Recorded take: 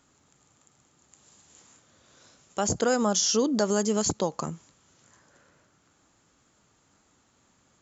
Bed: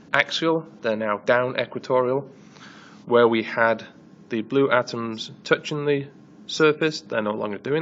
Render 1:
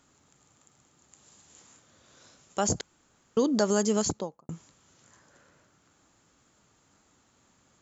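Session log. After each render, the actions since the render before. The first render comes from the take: 2.81–3.37 room tone; 3.95–4.49 studio fade out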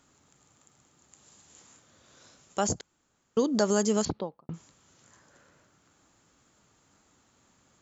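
2.67–3.55 upward expander, over -35 dBFS; 4.05–4.54 steep low-pass 4300 Hz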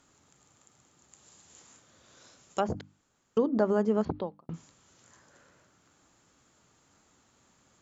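notches 50/100/150/200/250/300 Hz; treble ducked by the level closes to 1400 Hz, closed at -24 dBFS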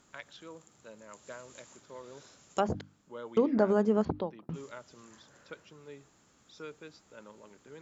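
add bed -27 dB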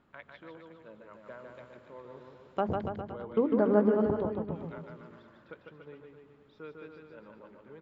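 air absorption 430 m; bouncing-ball echo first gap 0.15 s, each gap 0.9×, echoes 5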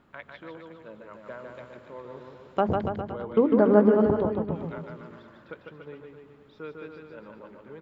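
gain +6 dB

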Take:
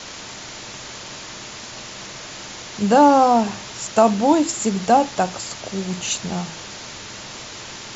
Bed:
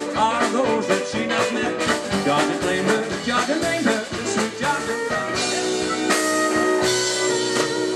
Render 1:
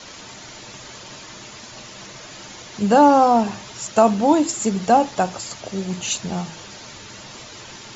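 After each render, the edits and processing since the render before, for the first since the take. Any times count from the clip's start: denoiser 7 dB, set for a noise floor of -36 dBFS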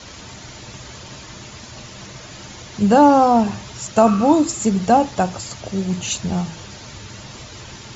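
4.08–4.54 spectral repair 1100–3500 Hz both; bell 67 Hz +13 dB 2.3 oct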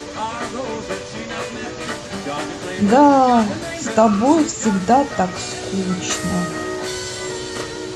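add bed -6.5 dB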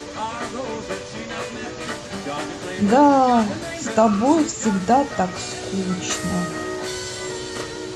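gain -2.5 dB

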